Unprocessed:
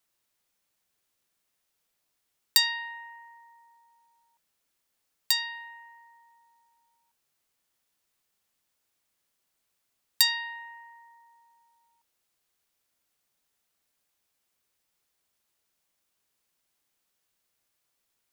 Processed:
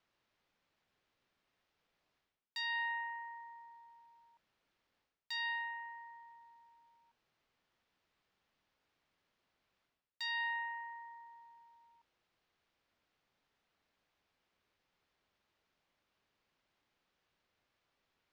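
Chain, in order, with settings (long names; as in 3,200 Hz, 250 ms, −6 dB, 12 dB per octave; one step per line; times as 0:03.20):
reversed playback
downward compressor 16 to 1, threshold −36 dBFS, peak gain reduction 22 dB
reversed playback
high-frequency loss of the air 230 metres
level +4.5 dB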